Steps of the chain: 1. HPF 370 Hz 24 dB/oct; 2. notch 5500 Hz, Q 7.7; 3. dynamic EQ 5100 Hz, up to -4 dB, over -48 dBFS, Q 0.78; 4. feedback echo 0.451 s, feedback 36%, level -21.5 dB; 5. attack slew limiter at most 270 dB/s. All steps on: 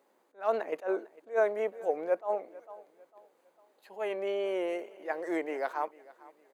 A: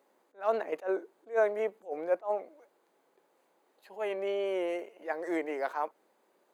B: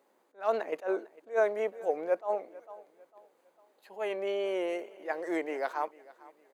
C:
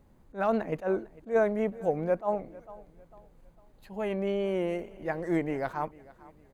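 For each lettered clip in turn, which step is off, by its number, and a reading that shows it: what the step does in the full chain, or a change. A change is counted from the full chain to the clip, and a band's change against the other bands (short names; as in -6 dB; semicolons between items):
4, momentary loudness spread change -1 LU; 3, 4 kHz band +2.0 dB; 1, 250 Hz band +7.0 dB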